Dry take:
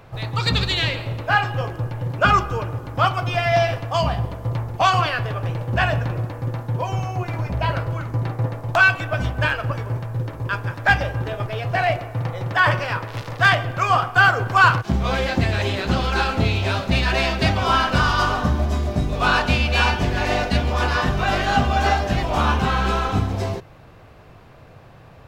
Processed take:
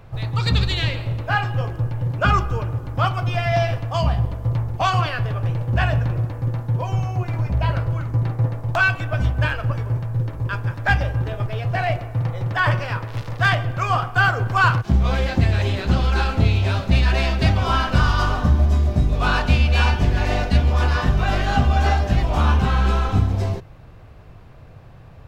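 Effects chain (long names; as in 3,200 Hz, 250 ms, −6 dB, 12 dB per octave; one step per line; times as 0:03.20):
low-shelf EQ 130 Hz +12 dB
level −3.5 dB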